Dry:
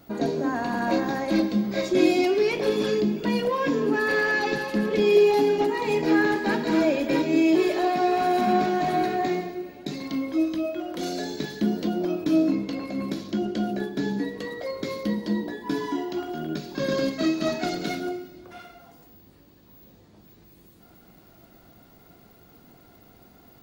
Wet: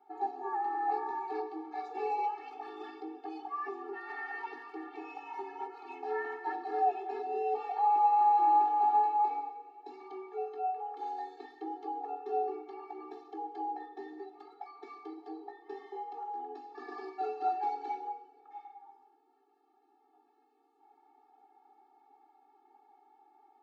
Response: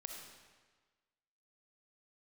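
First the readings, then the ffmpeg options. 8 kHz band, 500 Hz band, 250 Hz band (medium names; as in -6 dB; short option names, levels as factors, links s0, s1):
under -30 dB, -16.5 dB, -24.5 dB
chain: -af "bandpass=f=730:t=q:w=2.8:csg=0,afreqshift=110,afftfilt=real='re*eq(mod(floor(b*sr/1024/230),2),1)':imag='im*eq(mod(floor(b*sr/1024/230),2),1)':win_size=1024:overlap=0.75"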